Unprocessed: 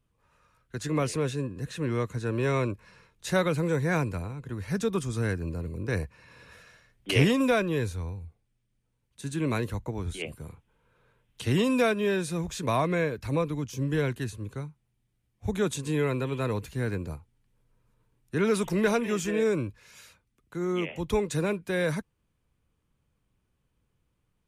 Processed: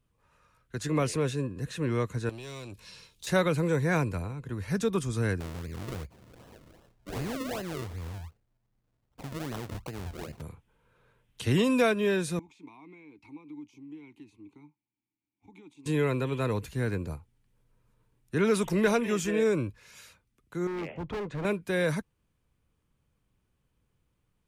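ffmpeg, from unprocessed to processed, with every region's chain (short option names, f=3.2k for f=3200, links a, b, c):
-filter_complex "[0:a]asettb=1/sr,asplit=3[a][b][c];[a]atrim=end=2.294[d];[b]atrim=start=2.29:end=3.27,asetpts=PTS-STARTPTS,afade=t=in:d=0.004:c=qsin,afade=t=out:st=0.976:d=0.004:c=qsin,highshelf=f=2.5k:t=q:w=1.5:g=12,acompressor=threshold=-36dB:ratio=12:attack=3.2:release=140:knee=1:detection=peak,asoftclip=type=hard:threshold=-37.5dB[e];[c]atrim=start=3.266[f];[d][e]acrossfade=d=0.004:c1=hsin:c2=qsin[g];[g][f]acrossfade=d=0.004:c1=qsin:c2=hsin,asettb=1/sr,asplit=3[h][i][j];[h]atrim=end=5.404[k];[i]atrim=start=5.4:end=10.42,asetpts=PTS-STARTPTS,afade=t=in:d=0.004:c=qsin,afade=t=out:st=5.016:d=0.004:c=qsin,asoftclip=type=hard:threshold=-17.5dB,acompressor=threshold=-35dB:ratio=3:attack=3.2:release=140:knee=1:detection=peak,acrusher=samples=38:mix=1:aa=0.000001:lfo=1:lforange=38:lforate=2.6[l];[j]atrim=start=10.416[m];[k][l]acrossfade=d=0.004:c1=hsin:c2=qsin[n];[n][m]acrossfade=d=0.004:c1=qsin:c2=hsin,asettb=1/sr,asplit=3[o][p][q];[o]atrim=end=12.394[r];[p]atrim=start=12.39:end=15.86,asetpts=PTS-STARTPTS,afade=t=in:d=0.004:c=qsin,afade=t=out:st=3.466:d=0.004:c=qsin,highshelf=f=2.6k:g=10,acompressor=threshold=-33dB:ratio=8:attack=3.2:release=140:knee=1:detection=peak,asplit=3[s][t][u];[s]bandpass=f=300:t=q:w=8,volume=0dB[v];[t]bandpass=f=870:t=q:w=8,volume=-6dB[w];[u]bandpass=f=2.24k:t=q:w=8,volume=-9dB[x];[v][w][x]amix=inputs=3:normalize=0[y];[q]atrim=start=15.856[z];[r][y]acrossfade=d=0.004:c1=hsin:c2=qsin[aa];[aa][z]acrossfade=d=0.004:c1=qsin:c2=hsin,asettb=1/sr,asplit=3[ab][ac][ad];[ab]atrim=end=20.674[ae];[ac]atrim=start=20.67:end=21.45,asetpts=PTS-STARTPTS,afade=t=in:d=0.004:c=qsin,afade=t=out:st=0.776:d=0.004:c=qsin,lowpass=1.8k,asoftclip=type=hard:threshold=-31.5dB[af];[ad]atrim=start=21.446[ag];[ae][af]acrossfade=d=0.004:c1=hsin:c2=qsin[ah];[ah][ag]acrossfade=d=0.004:c1=qsin:c2=hsin"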